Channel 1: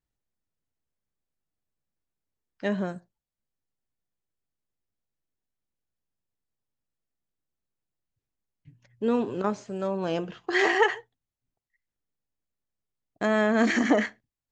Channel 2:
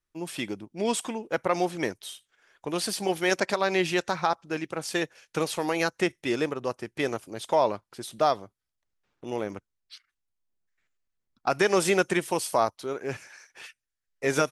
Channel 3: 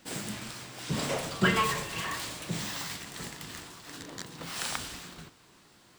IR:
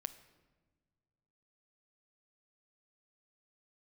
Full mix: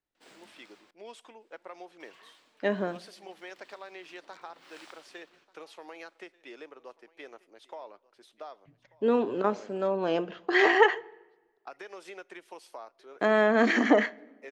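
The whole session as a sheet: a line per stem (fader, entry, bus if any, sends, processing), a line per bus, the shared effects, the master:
-2.0 dB, 0.00 s, send -5.5 dB, no echo send, bass shelf 220 Hz +11 dB
-16.5 dB, 0.20 s, send -10 dB, echo send -20.5 dB, high-pass 220 Hz 6 dB/octave; compression, threshold -24 dBFS, peak gain reduction 7 dB
-17.0 dB, 0.15 s, muted 0.91–2.00 s, send -9 dB, echo send -20.5 dB, auto duck -18 dB, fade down 0.90 s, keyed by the first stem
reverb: on, pre-delay 7 ms
echo: delay 1188 ms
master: three-band isolator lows -23 dB, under 280 Hz, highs -13 dB, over 4.9 kHz

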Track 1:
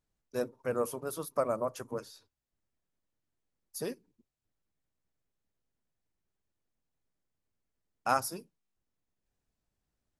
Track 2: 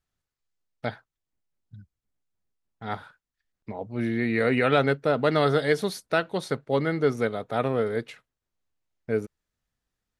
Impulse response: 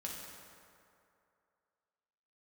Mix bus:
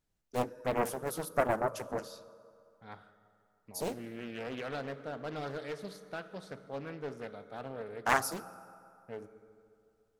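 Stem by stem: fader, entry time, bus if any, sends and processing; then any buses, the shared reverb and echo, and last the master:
+0.5 dB, 0.00 s, send -11.5 dB, band-stop 1.1 kHz, Q 18
-18.5 dB, 0.00 s, send -6 dB, hard clipper -15.5 dBFS, distortion -17 dB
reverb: on, RT60 2.6 s, pre-delay 3 ms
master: loudspeaker Doppler distortion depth 0.8 ms

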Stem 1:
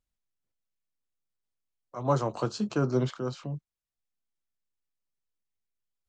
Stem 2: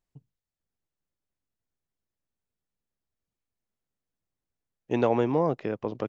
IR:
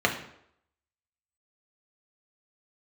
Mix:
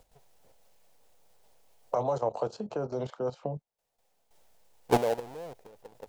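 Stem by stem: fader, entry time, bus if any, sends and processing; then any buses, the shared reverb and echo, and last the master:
-5.0 dB, 0.00 s, no send, three bands compressed up and down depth 100%
-1.0 dB, 0.00 s, no send, square wave that keeps the level; auto duck -23 dB, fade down 0.35 s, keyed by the first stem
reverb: none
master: level held to a coarse grid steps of 12 dB; high-order bell 630 Hz +12 dB 1.3 oct

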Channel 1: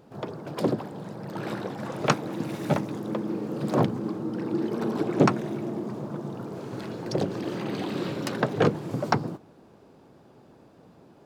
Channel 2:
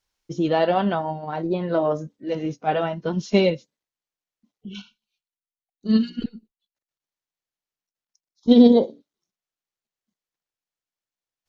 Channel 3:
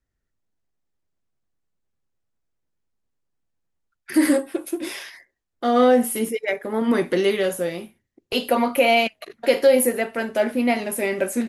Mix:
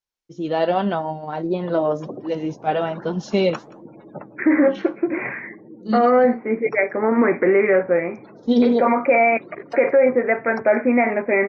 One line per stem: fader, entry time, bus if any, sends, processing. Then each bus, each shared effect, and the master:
-14.5 dB, 1.45 s, no send, echo send -20.5 dB, spectral gate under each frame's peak -20 dB strong; gain riding within 4 dB 0.5 s; flange 1.2 Hz, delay 0.5 ms, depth 9.4 ms, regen +79%
-13.0 dB, 0.00 s, no send, no echo send, bass shelf 480 Hz +7.5 dB
-1.5 dB, 0.30 s, no send, no echo send, de-esser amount 60%; Chebyshev low-pass 2.4 kHz, order 8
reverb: none
echo: delay 174 ms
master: bass shelf 220 Hz -11 dB; level rider gain up to 13 dB; peak limiter -7.5 dBFS, peak gain reduction 6 dB

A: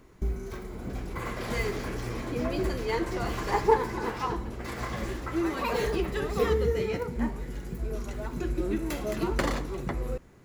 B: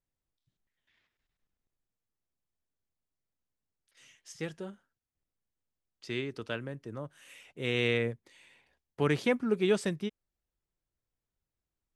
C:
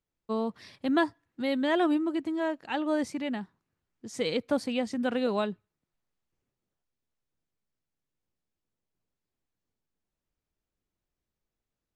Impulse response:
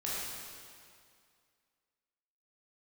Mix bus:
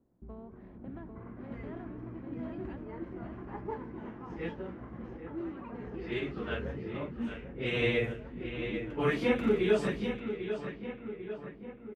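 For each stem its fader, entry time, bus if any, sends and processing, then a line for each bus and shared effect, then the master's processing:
-14.0 dB, 0.00 s, no send, echo send -12 dB, graphic EQ 250/500/1000/2000/4000/8000 Hz +6/-11/-7/-7/-12/-5 dB; level rider gain up to 7 dB; high-pass 62 Hz
+1.0 dB, 0.00 s, no send, echo send -9 dB, phase randomisation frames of 100 ms
-17.5 dB, 0.00 s, no send, echo send -5 dB, spectral levelling over time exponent 0.6; bass shelf 260 Hz +10.5 dB; compression 6:1, threshold -27 dBFS, peak gain reduction 10.5 dB; auto duck -9 dB, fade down 1.90 s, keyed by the second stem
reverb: none
echo: feedback delay 795 ms, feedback 58%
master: level-controlled noise filter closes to 770 Hz, open at -26 dBFS; tone controls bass -3 dB, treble -10 dB; de-hum 50.64 Hz, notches 9

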